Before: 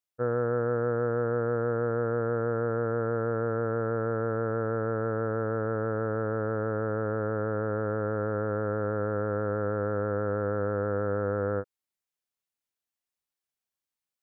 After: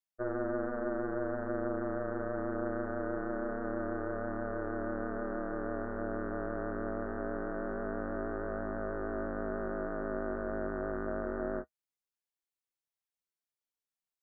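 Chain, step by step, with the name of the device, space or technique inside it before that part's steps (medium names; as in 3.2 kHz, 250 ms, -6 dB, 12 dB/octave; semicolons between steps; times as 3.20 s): alien voice (ring modulator 130 Hz; flange 0.23 Hz, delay 0.9 ms, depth 9.9 ms, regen -50%)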